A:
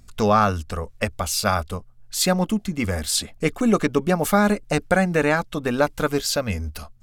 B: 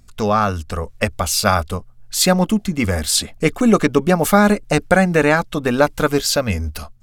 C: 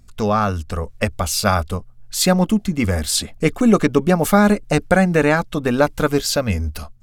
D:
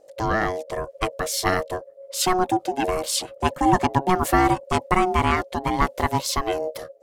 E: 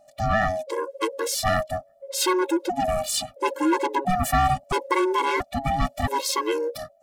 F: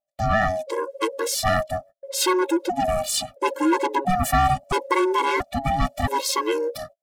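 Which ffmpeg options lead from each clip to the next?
-af "dynaudnorm=f=430:g=3:m=3.76"
-af "lowshelf=f=420:g=3.5,volume=0.75"
-af "aeval=exprs='val(0)*sin(2*PI*550*n/s)':c=same,volume=0.794"
-af "asoftclip=type=tanh:threshold=0.158,afftfilt=real='re*gt(sin(2*PI*0.74*pts/sr)*(1-2*mod(floor(b*sr/1024/280),2)),0)':imag='im*gt(sin(2*PI*0.74*pts/sr)*(1-2*mod(floor(b*sr/1024/280),2)),0)':win_size=1024:overlap=0.75,volume=1.68"
-af "agate=range=0.0178:threshold=0.00794:ratio=16:detection=peak,volume=1.19"

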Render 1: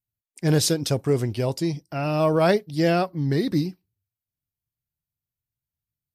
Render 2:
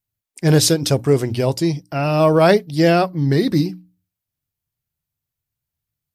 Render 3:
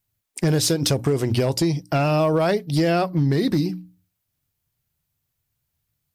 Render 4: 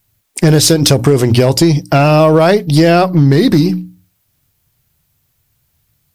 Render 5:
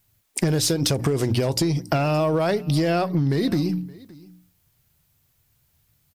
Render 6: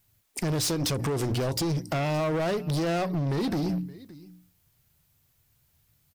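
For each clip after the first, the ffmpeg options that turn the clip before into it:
-af "bandreject=f=60:t=h:w=6,bandreject=f=120:t=h:w=6,bandreject=f=180:t=h:w=6,bandreject=f=240:t=h:w=6,bandreject=f=300:t=h:w=6,volume=2.11"
-filter_complex "[0:a]asplit=2[s0][s1];[s1]alimiter=limit=0.251:level=0:latency=1:release=32,volume=1.12[s2];[s0][s2]amix=inputs=2:normalize=0,acompressor=threshold=0.158:ratio=16,volume=4.73,asoftclip=hard,volume=0.211"
-filter_complex "[0:a]asplit=2[s0][s1];[s1]alimiter=level_in=1.06:limit=0.0631:level=0:latency=1:release=65,volume=0.944,volume=1.12[s2];[s0][s2]amix=inputs=2:normalize=0,aeval=exprs='0.282*(cos(1*acos(clip(val(0)/0.282,-1,1)))-cos(1*PI/2))+0.00447*(cos(6*acos(clip(val(0)/0.282,-1,1)))-cos(6*PI/2))':c=same,volume=2.66"
-af "acompressor=threshold=0.178:ratio=6,aecho=1:1:570:0.0708,volume=0.631"
-af "asoftclip=type=hard:threshold=0.075,volume=0.794"

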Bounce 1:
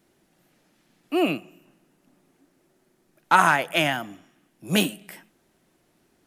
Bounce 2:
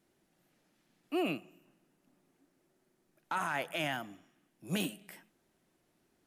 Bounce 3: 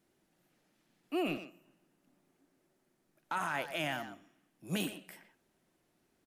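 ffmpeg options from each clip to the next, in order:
-af "alimiter=limit=0.178:level=0:latency=1:release=15,volume=0.355"
-filter_complex "[0:a]asplit=2[s0][s1];[s1]adelay=120,highpass=300,lowpass=3400,asoftclip=type=hard:threshold=0.0237,volume=0.355[s2];[s0][s2]amix=inputs=2:normalize=0,volume=0.891"

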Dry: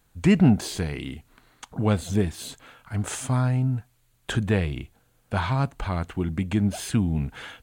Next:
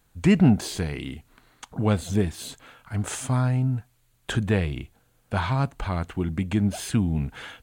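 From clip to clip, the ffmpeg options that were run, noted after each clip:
-af anull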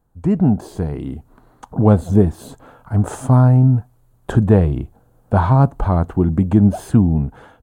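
-af "firequalizer=gain_entry='entry(850,0);entry(2200,-20);entry(11000,-12)':delay=0.05:min_phase=1,dynaudnorm=f=100:g=13:m=3.76,volume=1.12"

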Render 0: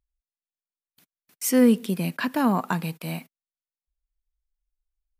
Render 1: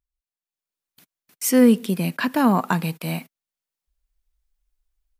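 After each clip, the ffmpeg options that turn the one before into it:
-af "dynaudnorm=f=430:g=3:m=4.22,volume=0.631"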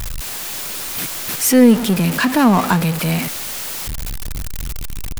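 -af "aeval=exprs='val(0)+0.5*0.1*sgn(val(0))':c=same,volume=1.41"

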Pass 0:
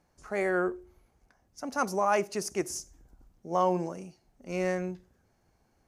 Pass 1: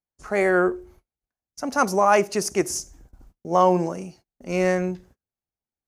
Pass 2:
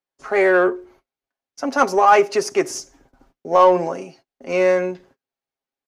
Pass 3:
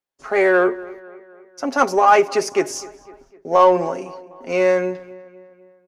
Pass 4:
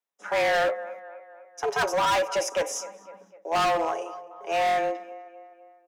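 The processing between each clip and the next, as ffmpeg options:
-af "agate=range=0.0158:threshold=0.00141:ratio=16:detection=peak,volume=2.66"
-filter_complex "[0:a]acrossover=split=250 5000:gain=0.158 1 0.224[s0][s1][s2];[s0][s1][s2]amix=inputs=3:normalize=0,aecho=1:1:7.4:0.54,asplit=2[s3][s4];[s4]asoftclip=type=tanh:threshold=0.1,volume=0.473[s5];[s3][s5]amix=inputs=2:normalize=0,volume=1.26"
-filter_complex "[0:a]asplit=2[s0][s1];[s1]adelay=252,lowpass=f=3200:p=1,volume=0.1,asplit=2[s2][s3];[s3]adelay=252,lowpass=f=3200:p=1,volume=0.55,asplit=2[s4][s5];[s5]adelay=252,lowpass=f=3200:p=1,volume=0.55,asplit=2[s6][s7];[s7]adelay=252,lowpass=f=3200:p=1,volume=0.55[s8];[s0][s2][s4][s6][s8]amix=inputs=5:normalize=0"
-af "asuperstop=centerf=4300:order=4:qfactor=6.2,afreqshift=160,asoftclip=type=hard:threshold=0.126,volume=0.708"

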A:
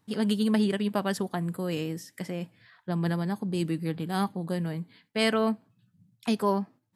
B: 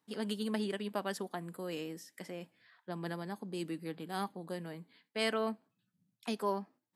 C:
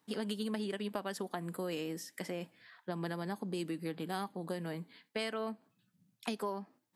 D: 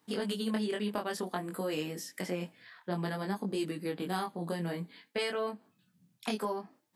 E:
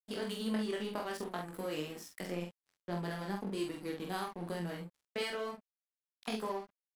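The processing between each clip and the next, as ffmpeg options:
-af "highpass=260,volume=0.447"
-af "acompressor=threshold=0.01:ratio=6,volume=2"
-af "flanger=delay=20:depth=3.5:speed=0.55,volume=2.24"
-filter_complex "[0:a]aeval=exprs='sgn(val(0))*max(abs(val(0))-0.00531,0)':c=same,asplit=2[s0][s1];[s1]adelay=46,volume=0.631[s2];[s0][s2]amix=inputs=2:normalize=0,volume=0.668"

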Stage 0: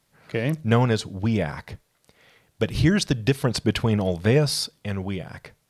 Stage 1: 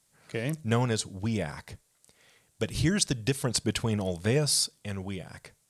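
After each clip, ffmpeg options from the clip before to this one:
-af "equalizer=f=8200:t=o:w=1.2:g=13.5,volume=0.447"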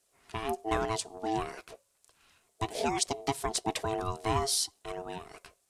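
-af "flanger=delay=0.8:depth=5.4:regen=59:speed=1:shape=triangular,aeval=exprs='val(0)*sin(2*PI*550*n/s)':c=same,volume=1.5"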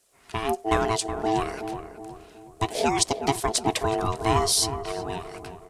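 -filter_complex "[0:a]asplit=2[s0][s1];[s1]adelay=370,lowpass=f=1100:p=1,volume=0.398,asplit=2[s2][s3];[s3]adelay=370,lowpass=f=1100:p=1,volume=0.49,asplit=2[s4][s5];[s5]adelay=370,lowpass=f=1100:p=1,volume=0.49,asplit=2[s6][s7];[s7]adelay=370,lowpass=f=1100:p=1,volume=0.49,asplit=2[s8][s9];[s9]adelay=370,lowpass=f=1100:p=1,volume=0.49,asplit=2[s10][s11];[s11]adelay=370,lowpass=f=1100:p=1,volume=0.49[s12];[s0][s2][s4][s6][s8][s10][s12]amix=inputs=7:normalize=0,volume=2.24"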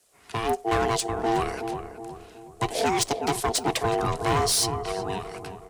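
-af "asoftclip=type=hard:threshold=0.106,afreqshift=17,volume=1.19"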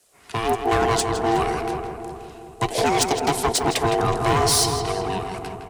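-filter_complex "[0:a]asplit=2[s0][s1];[s1]adelay=162,lowpass=f=3300:p=1,volume=0.501,asplit=2[s2][s3];[s3]adelay=162,lowpass=f=3300:p=1,volume=0.46,asplit=2[s4][s5];[s5]adelay=162,lowpass=f=3300:p=1,volume=0.46,asplit=2[s6][s7];[s7]adelay=162,lowpass=f=3300:p=1,volume=0.46,asplit=2[s8][s9];[s9]adelay=162,lowpass=f=3300:p=1,volume=0.46,asplit=2[s10][s11];[s11]adelay=162,lowpass=f=3300:p=1,volume=0.46[s12];[s0][s2][s4][s6][s8][s10][s12]amix=inputs=7:normalize=0,volume=1.5"

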